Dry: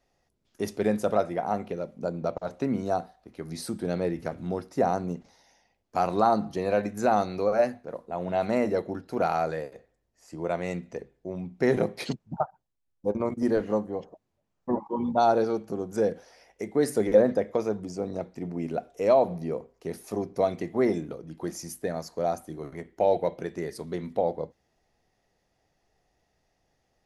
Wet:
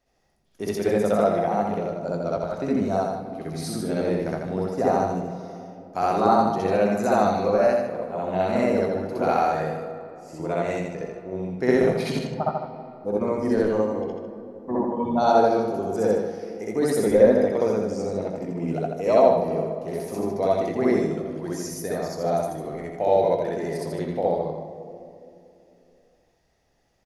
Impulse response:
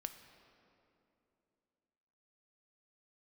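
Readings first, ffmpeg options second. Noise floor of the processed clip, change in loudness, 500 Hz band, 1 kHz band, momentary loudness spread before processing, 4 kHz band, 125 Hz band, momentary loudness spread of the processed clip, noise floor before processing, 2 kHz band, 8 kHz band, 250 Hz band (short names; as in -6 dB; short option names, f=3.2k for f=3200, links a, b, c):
-64 dBFS, +4.5 dB, +5.0 dB, +4.5 dB, 14 LU, +4.5 dB, +5.0 dB, 14 LU, -76 dBFS, +4.5 dB, +4.5 dB, +4.5 dB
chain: -filter_complex "[0:a]aecho=1:1:83|152:0.562|0.316,asplit=2[a][b];[1:a]atrim=start_sample=2205,adelay=64[c];[b][c]afir=irnorm=-1:irlink=0,volume=6.5dB[d];[a][d]amix=inputs=2:normalize=0,volume=-2dB"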